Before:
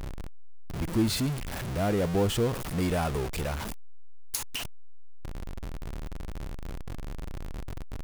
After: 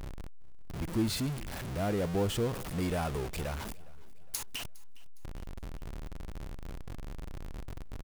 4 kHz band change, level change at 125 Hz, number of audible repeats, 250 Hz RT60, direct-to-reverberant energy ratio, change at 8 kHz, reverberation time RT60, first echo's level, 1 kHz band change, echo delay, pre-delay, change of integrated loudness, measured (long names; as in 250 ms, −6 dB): −4.5 dB, −4.5 dB, 2, no reverb audible, no reverb audible, −4.5 dB, no reverb audible, −22.5 dB, −4.5 dB, 410 ms, no reverb audible, −4.5 dB